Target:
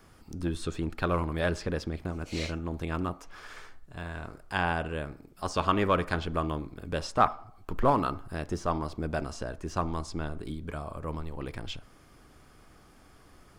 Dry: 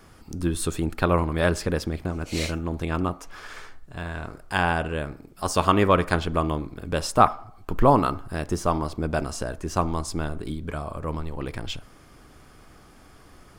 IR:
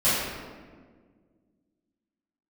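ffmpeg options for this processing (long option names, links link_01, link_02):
-filter_complex "[0:a]acrossover=split=870|6700[link_01][link_02][link_03];[link_01]aeval=exprs='clip(val(0),-1,0.133)':channel_layout=same[link_04];[link_03]acompressor=threshold=-55dB:ratio=6[link_05];[link_04][link_02][link_05]amix=inputs=3:normalize=0,volume=-5.5dB"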